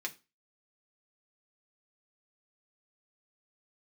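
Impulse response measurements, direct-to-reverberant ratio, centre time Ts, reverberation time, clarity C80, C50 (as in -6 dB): 0.5 dB, 6 ms, 0.30 s, 25.0 dB, 19.0 dB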